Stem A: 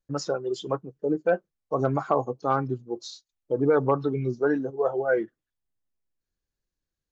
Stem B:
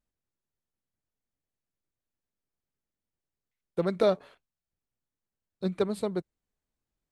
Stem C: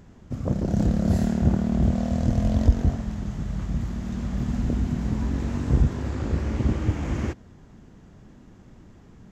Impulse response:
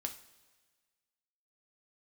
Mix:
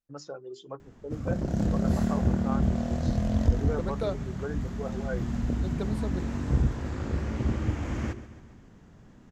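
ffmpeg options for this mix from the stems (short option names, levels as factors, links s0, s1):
-filter_complex "[0:a]volume=0.251[s0];[1:a]volume=0.422[s1];[2:a]equalizer=f=1500:w=1.5:g=2,adelay=800,volume=0.668,asplit=2[s2][s3];[s3]volume=0.178,aecho=0:1:136|272|408|544|680|816|952|1088:1|0.56|0.314|0.176|0.0983|0.0551|0.0308|0.0173[s4];[s0][s1][s2][s4]amix=inputs=4:normalize=0,bandreject=f=50:t=h:w=6,bandreject=f=100:t=h:w=6,bandreject=f=150:t=h:w=6,bandreject=f=200:t=h:w=6,bandreject=f=250:t=h:w=6,bandreject=f=300:t=h:w=6,bandreject=f=350:t=h:w=6,bandreject=f=400:t=h:w=6"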